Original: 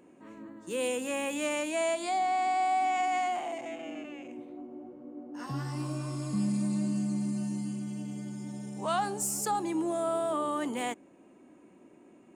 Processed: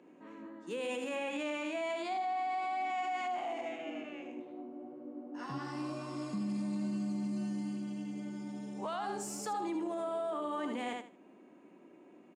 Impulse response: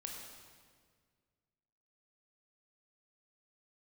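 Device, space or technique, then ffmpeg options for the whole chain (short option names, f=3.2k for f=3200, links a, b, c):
DJ mixer with the lows and highs turned down: -filter_complex "[0:a]asettb=1/sr,asplit=3[a][b][c];[a]atrim=end=1.154[d];[b]atrim=start=1.15:end=2.9,asetpts=PTS-STARTPTS,afade=t=in:d=0.004:c=qsin,afade=t=out:st=1.746:d=0.004:c=qsin,equalizer=f=13k:w=0.59:g=-7[e];[c]atrim=start=2.896[f];[d][e]acrossfade=d=0.004:c1=hsin:c2=qsin[g];[g][f]acrossfade=d=0.004:c1=qsin:c2=hsin,acrossover=split=150 5600:gain=0.0708 1 0.158[h][i][j];[h][i][j]amix=inputs=3:normalize=0,aecho=1:1:77|154|231:0.501|0.105|0.0221,alimiter=level_in=4dB:limit=-24dB:level=0:latency=1:release=54,volume=-4dB,volume=-1.5dB"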